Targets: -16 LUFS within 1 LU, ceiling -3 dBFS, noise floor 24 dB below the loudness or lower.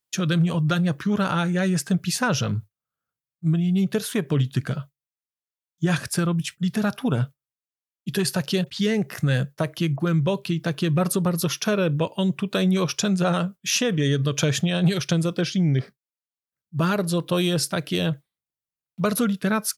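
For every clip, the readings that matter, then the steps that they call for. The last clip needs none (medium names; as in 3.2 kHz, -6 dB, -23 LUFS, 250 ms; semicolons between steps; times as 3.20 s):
loudness -23.5 LUFS; peak level -8.5 dBFS; loudness target -16.0 LUFS
-> trim +7.5 dB; peak limiter -3 dBFS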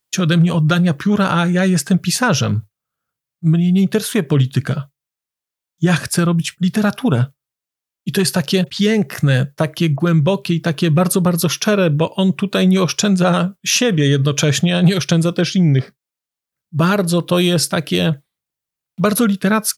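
loudness -16.0 LUFS; peak level -3.0 dBFS; noise floor -87 dBFS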